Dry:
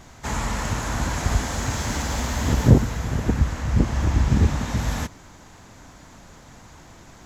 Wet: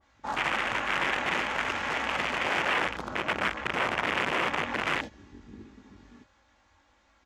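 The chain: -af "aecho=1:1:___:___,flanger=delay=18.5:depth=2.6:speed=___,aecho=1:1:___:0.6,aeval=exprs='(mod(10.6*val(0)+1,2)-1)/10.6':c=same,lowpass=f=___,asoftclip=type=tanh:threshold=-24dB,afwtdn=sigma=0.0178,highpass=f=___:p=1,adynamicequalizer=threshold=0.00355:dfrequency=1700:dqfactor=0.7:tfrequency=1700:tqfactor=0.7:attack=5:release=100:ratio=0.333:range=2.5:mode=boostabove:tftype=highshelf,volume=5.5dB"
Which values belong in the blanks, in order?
1166, 0.178, 1.4, 3.6, 3.9k, 880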